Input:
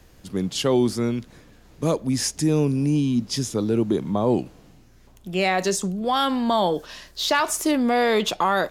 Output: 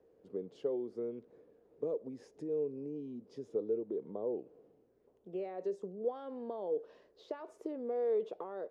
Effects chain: compression, threshold -25 dBFS, peak gain reduction 9.5 dB; band-pass filter 450 Hz, Q 5.6

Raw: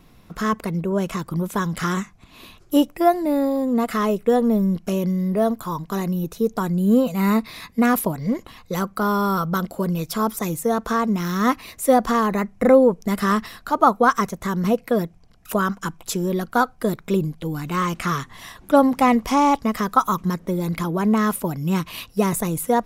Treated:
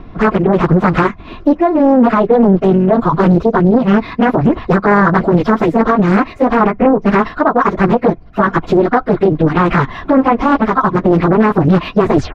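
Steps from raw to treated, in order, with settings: tape stop on the ending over 0.35 s; de-esser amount 45%; treble shelf 2.6 kHz -9.5 dB; comb 2.9 ms, depth 31%; gain riding within 5 dB 0.5 s; plain phase-vocoder stretch 0.54×; distance through air 250 m; loudness maximiser +19 dB; loudspeaker Doppler distortion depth 0.64 ms; trim -1 dB

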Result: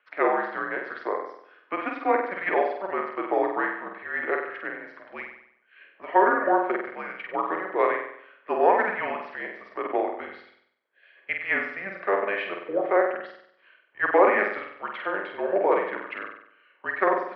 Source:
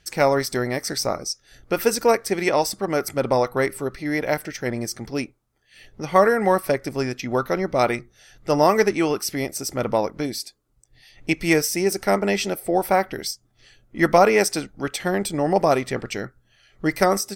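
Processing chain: mistuned SSB -200 Hz 490–3400 Hz; three-band isolator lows -23 dB, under 400 Hz, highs -19 dB, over 2.5 kHz; flutter echo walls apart 8.2 m, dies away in 0.68 s

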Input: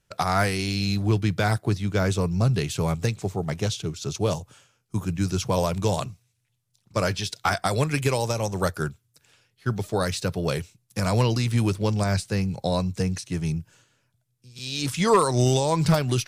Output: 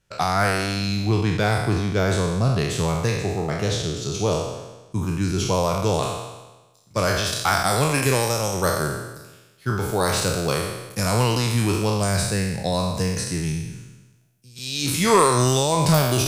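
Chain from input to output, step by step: spectral sustain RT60 1.15 s; de-esser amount 30%; treble shelf 9.7 kHz -4.5 dB, from 6.03 s +6.5 dB, from 7.27 s +11.5 dB

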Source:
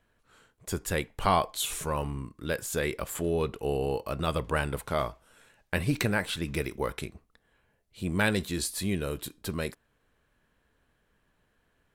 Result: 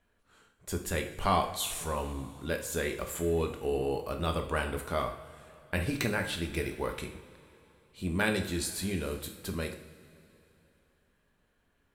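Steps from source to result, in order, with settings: two-slope reverb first 0.52 s, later 3.2 s, from -17 dB, DRR 4 dB; trim -3.5 dB

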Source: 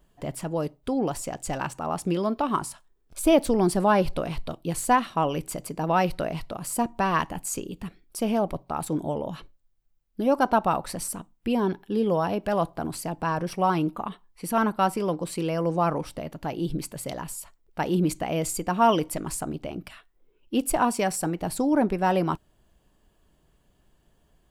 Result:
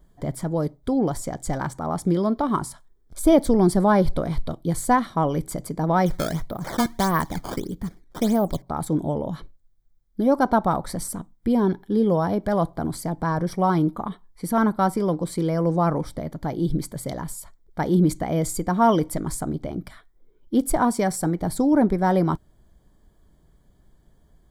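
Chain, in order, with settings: bass shelf 320 Hz +8 dB; 6.06–8.62 s: decimation with a swept rate 13×, swing 160% 1.6 Hz; Butterworth band-stop 2.7 kHz, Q 3.4

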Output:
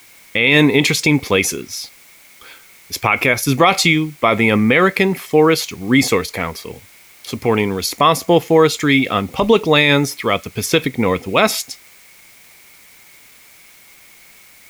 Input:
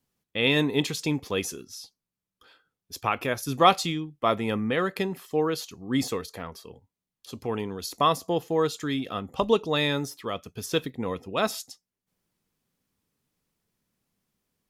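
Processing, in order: in parallel at -10 dB: word length cut 8-bit, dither triangular; on the sum: peaking EQ 2.2 kHz +15 dB 0.24 oct; loudness maximiser +12.5 dB; trim -1 dB

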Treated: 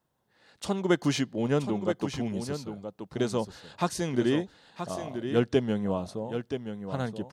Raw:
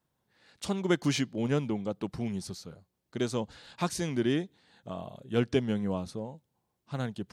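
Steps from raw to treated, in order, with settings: peaking EQ 690 Hz +4.5 dB 2.2 oct; band-stop 2.3 kHz, Q 18; delay 977 ms -8.5 dB

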